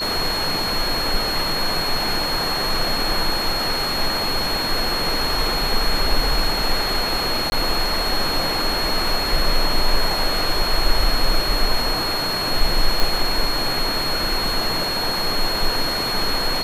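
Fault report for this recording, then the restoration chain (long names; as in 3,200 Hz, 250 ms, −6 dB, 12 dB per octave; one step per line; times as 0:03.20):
whistle 4,300 Hz −23 dBFS
0:07.50–0:07.52: drop-out 21 ms
0:13.00: click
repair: click removal
notch filter 4,300 Hz, Q 30
repair the gap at 0:07.50, 21 ms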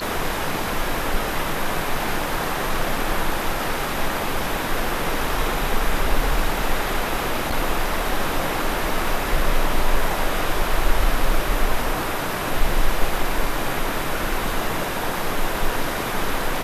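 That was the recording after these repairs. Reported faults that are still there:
none of them is left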